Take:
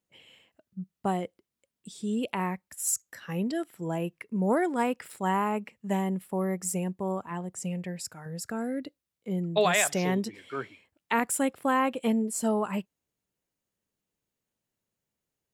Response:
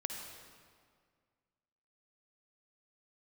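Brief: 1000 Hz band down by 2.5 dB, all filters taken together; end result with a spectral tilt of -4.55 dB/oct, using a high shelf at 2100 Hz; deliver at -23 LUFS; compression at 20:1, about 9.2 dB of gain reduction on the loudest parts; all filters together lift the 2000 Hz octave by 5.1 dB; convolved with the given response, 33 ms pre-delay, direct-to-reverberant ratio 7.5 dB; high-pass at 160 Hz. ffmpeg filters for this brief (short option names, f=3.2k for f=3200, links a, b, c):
-filter_complex "[0:a]highpass=160,equalizer=f=1k:t=o:g=-4.5,equalizer=f=2k:t=o:g=9,highshelf=f=2.1k:g=-3.5,acompressor=threshold=-27dB:ratio=20,asplit=2[a][b];[1:a]atrim=start_sample=2205,adelay=33[c];[b][c]afir=irnorm=-1:irlink=0,volume=-8.5dB[d];[a][d]amix=inputs=2:normalize=0,volume=11dB"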